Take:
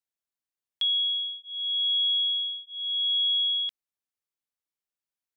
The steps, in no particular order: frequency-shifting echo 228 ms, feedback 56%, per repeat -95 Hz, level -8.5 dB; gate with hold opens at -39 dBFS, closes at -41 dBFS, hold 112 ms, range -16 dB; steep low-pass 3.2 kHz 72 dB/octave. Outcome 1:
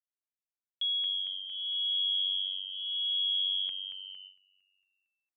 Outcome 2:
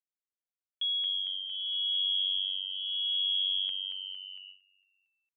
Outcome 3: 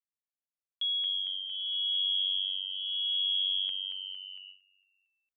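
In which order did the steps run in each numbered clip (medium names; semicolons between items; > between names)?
steep low-pass > frequency-shifting echo > gate with hold; frequency-shifting echo > gate with hold > steep low-pass; frequency-shifting echo > steep low-pass > gate with hold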